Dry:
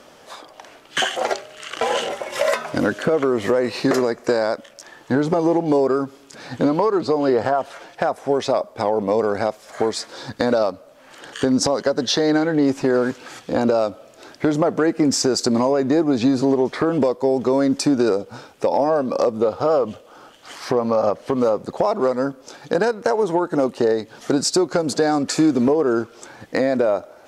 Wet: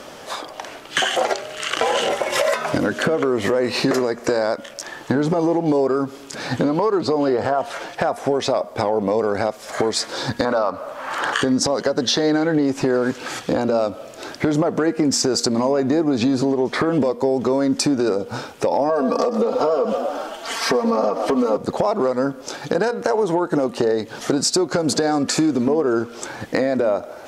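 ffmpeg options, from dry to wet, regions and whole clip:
-filter_complex "[0:a]asettb=1/sr,asplit=3[s0][s1][s2];[s0]atrim=end=10.454[s3];[s1]atrim=start=10.45:end=11.41,asetpts=PTS-STARTPTS,afade=t=in:d=0.004:c=qsin,afade=t=out:st=0.956:d=0.004:c=qsin,acompressor=threshold=0.0794:ratio=2:attack=3.2:release=140:knee=1:detection=peak,equalizer=f=1100:w=0.87:g=15[s4];[s2]atrim=start=11.406[s5];[s3][s4]acrossfade=d=0.004:c1=hsin:c2=qsin[s6];[s6][s5]acrossfade=d=0.004:c1=qsin:c2=hsin,asettb=1/sr,asplit=3[s7][s8][s9];[s7]atrim=end=18.894[s10];[s8]atrim=start=18.89:end=21.57,asetpts=PTS-STARTPTS,afade=t=in:d=0.004:c=qsin,afade=t=out:st=2.676:d=0.004:c=qsin,equalizer=f=110:w=1.3:g=-9.5,aecho=1:1:4.4:0.88,atrim=end_sample=118188,asplit=7[s11][s12][s13][s14][s15][s16][s17];[s12]adelay=125,afreqshift=34,volume=0.224[s18];[s13]adelay=250,afreqshift=68,volume=0.126[s19];[s14]adelay=375,afreqshift=102,volume=0.07[s20];[s15]adelay=500,afreqshift=136,volume=0.0394[s21];[s16]adelay=625,afreqshift=170,volume=0.0221[s22];[s17]adelay=750,afreqshift=204,volume=0.0123[s23];[s11][s18][s19][s20][s21][s22][s23]amix=inputs=7:normalize=0,atrim=end_sample=118188[s24];[s9]atrim=start=21.566[s25];[s10][s24]acrossfade=d=0.004:c1=hsin:c2=qsin[s26];[s26][s25]acrossfade=d=0.004:c1=qsin:c2=hsin,alimiter=limit=0.237:level=0:latency=1:release=149,acompressor=threshold=0.0501:ratio=3,bandreject=f=237.1:t=h:w=4,bandreject=f=474.2:t=h:w=4,bandreject=f=711.3:t=h:w=4,bandreject=f=948.4:t=h:w=4,bandreject=f=1185.5:t=h:w=4,bandreject=f=1422.6:t=h:w=4,bandreject=f=1659.7:t=h:w=4,bandreject=f=1896.8:t=h:w=4,bandreject=f=2133.9:t=h:w=4,bandreject=f=2371:t=h:w=4,bandreject=f=2608.1:t=h:w=4,bandreject=f=2845.2:t=h:w=4,bandreject=f=3082.3:t=h:w=4,bandreject=f=3319.4:t=h:w=4,volume=2.82"

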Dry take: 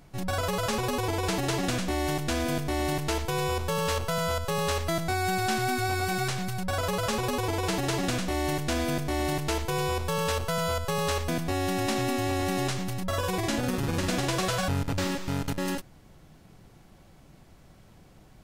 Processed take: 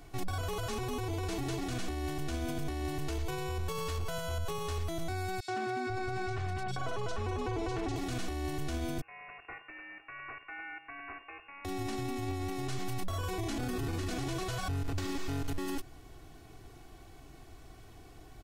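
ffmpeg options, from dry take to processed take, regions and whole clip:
-filter_complex "[0:a]asettb=1/sr,asplit=3[s0][s1][s2];[s0]atrim=end=5.404[s3];[s1]atrim=start=5.4:end=7.96,asetpts=PTS-STARTPTS,afade=t=in:d=0.004:c=qsin,afade=t=out:st=2.556:d=0.004:c=qsin,lowpass=7100,highshelf=f=3900:g=-7.5,acrossover=split=160|3200[s4][s5][s6];[s5]adelay=80[s7];[s4]adelay=490[s8];[s8][s7][s6]amix=inputs=3:normalize=0,atrim=end_sample=112896[s9];[s2]atrim=start=7.956[s10];[s3][s9]acrossfade=d=0.004:c1=hsin:c2=qsin[s11];[s11][s10]acrossfade=d=0.004:c1=qsin:c2=hsin,asettb=1/sr,asplit=3[s12][s13][s14];[s12]atrim=end=9.014[s15];[s13]atrim=start=9.01:end=11.65,asetpts=PTS-STARTPTS,afade=t=in:d=0.004:c=qsin,afade=t=out:st=2.636:d=0.004:c=qsin,aderivative,acrusher=bits=7:dc=4:mix=0:aa=0.000001,lowpass=f=2400:t=q:w=0.5098,lowpass=f=2400:t=q:w=0.6013,lowpass=f=2400:t=q:w=0.9,lowpass=f=2400:t=q:w=2.563,afreqshift=-2800[s16];[s14]atrim=start=11.646[s17];[s15][s16]acrossfade=d=0.004:c1=hsin:c2=qsin[s18];[s18][s17]acrossfade=d=0.004:c1=qsin:c2=hsin,aecho=1:1:2.7:0.72,acrossover=split=260[s19][s20];[s20]acompressor=threshold=0.02:ratio=4[s21];[s19][s21]amix=inputs=2:normalize=0,alimiter=level_in=1.41:limit=0.0631:level=0:latency=1:release=22,volume=0.708"

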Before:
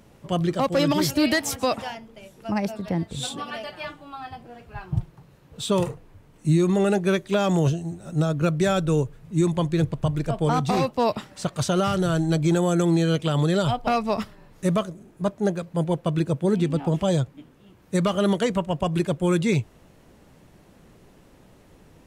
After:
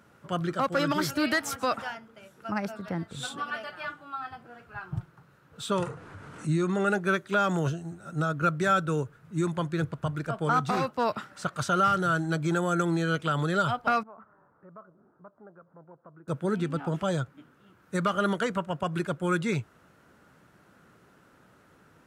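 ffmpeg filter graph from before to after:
-filter_complex "[0:a]asettb=1/sr,asplit=3[s0][s1][s2];[s0]atrim=end=5.724[s3];[s1]atrim=start=5.72:end=6.89,asetpts=PTS-STARTPTS,afade=t=in:d=0.004:c=qsin,afade=t=out:st=1.166:d=0.004:c=qsin,lowpass=f=10000:w=0.5412,lowpass=f=10000:w=1.3066,acompressor=mode=upward:threshold=0.0794:ratio=2.5:attack=3.2:release=140:knee=2.83:detection=peak[s4];[s2]atrim=start=6.886[s5];[s3][s4]acrossfade=d=0.004:c1=hsin:c2=qsin[s6];[s6][s5]acrossfade=d=0.004:c1=qsin:c2=hsin,asettb=1/sr,asplit=3[s7][s8][s9];[s7]atrim=end=14.034[s10];[s8]atrim=start=14.03:end=16.28,asetpts=PTS-STARTPTS,afade=t=in:d=0.004:c=qsin,afade=t=out:st=2.246:d=0.004:c=qsin,lowpass=f=1200:w=0.5412,lowpass=f=1200:w=1.3066,acompressor=threshold=0.00708:ratio=2.5:attack=3.2:release=140:knee=1:detection=peak,lowshelf=f=350:g=-10.5[s11];[s9]atrim=start=16.276[s12];[s10][s11]acrossfade=d=0.004:c1=hsin:c2=qsin[s13];[s13][s12]acrossfade=d=0.004:c1=qsin:c2=hsin,highpass=89,equalizer=f=1400:w=2.5:g=15,volume=0.447"

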